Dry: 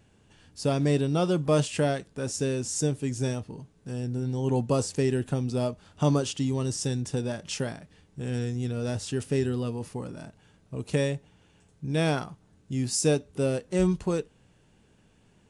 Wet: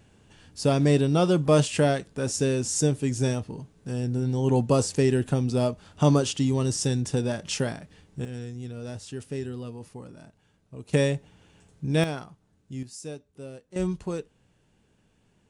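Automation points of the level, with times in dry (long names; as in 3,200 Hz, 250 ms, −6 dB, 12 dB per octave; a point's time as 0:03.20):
+3.5 dB
from 0:08.25 −6.5 dB
from 0:10.93 +3.5 dB
from 0:12.04 −6 dB
from 0:12.83 −14.5 dB
from 0:13.76 −4 dB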